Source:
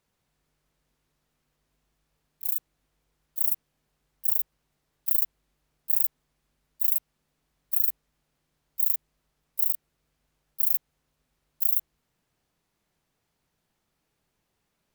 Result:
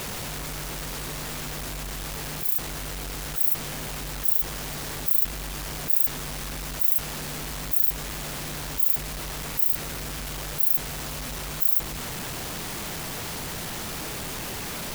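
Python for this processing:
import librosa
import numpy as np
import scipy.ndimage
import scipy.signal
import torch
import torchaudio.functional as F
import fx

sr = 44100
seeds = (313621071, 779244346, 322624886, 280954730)

y = x + 0.5 * 10.0 ** (-28.0 / 20.0) * np.sign(x)
y = F.gain(torch.from_numpy(y), 1.0).numpy()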